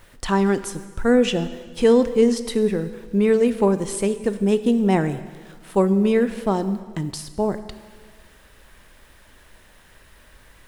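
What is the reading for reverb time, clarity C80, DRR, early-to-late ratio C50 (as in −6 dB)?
1.6 s, 14.0 dB, 11.5 dB, 13.0 dB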